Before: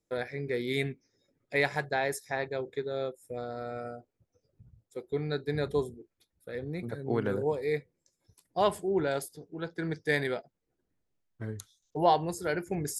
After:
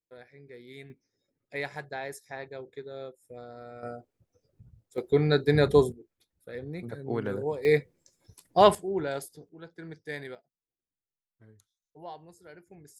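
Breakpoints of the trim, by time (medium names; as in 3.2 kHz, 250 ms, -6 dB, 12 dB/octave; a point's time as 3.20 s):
-16 dB
from 0.90 s -7 dB
from 3.83 s +2 dB
from 4.98 s +9 dB
from 5.92 s -1.5 dB
from 7.65 s +8 dB
from 8.75 s -2 dB
from 9.49 s -9.5 dB
from 10.35 s -19 dB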